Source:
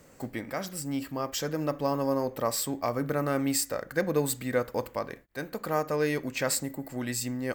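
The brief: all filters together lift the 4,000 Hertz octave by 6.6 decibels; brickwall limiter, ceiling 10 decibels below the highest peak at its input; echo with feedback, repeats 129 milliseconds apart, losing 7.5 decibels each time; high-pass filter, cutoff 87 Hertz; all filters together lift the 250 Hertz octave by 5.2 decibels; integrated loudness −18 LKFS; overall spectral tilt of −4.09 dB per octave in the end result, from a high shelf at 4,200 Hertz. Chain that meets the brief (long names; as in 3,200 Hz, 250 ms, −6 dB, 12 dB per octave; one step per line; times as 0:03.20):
high-pass filter 87 Hz
parametric band 250 Hz +6 dB
parametric band 4,000 Hz +4 dB
high-shelf EQ 4,200 Hz +6.5 dB
brickwall limiter −18.5 dBFS
repeating echo 129 ms, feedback 42%, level −7.5 dB
level +11 dB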